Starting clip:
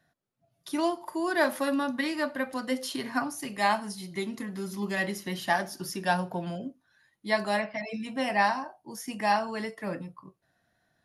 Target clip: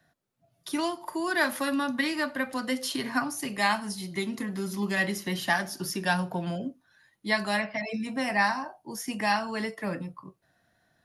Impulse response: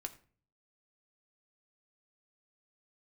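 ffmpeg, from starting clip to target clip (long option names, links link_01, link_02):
-filter_complex "[0:a]asettb=1/sr,asplit=3[link_01][link_02][link_03];[link_01]atrim=end=7.924[link_04];[link_02]atrim=start=7.92:end=8.6,asetpts=PTS-STARTPTS,afade=type=in:duration=0.004:curve=qsin,afade=type=out:start_time=0.676:duration=0.004:curve=qsin,equalizer=frequency=3100:width_type=o:width=0.41:gain=-7.5[link_05];[link_03]atrim=start=8.596[link_06];[link_04][link_05]acrossfade=duration=0.004:curve1=hsin:curve2=qsin[link_07];[link_07][link_06]acrossfade=duration=0.004:curve1=qsin:curve2=hsin,acrossover=split=260|1000|2900[link_08][link_09][link_10][link_11];[link_09]acompressor=threshold=-37dB:ratio=6[link_12];[link_08][link_12][link_10][link_11]amix=inputs=4:normalize=0,volume=3.5dB"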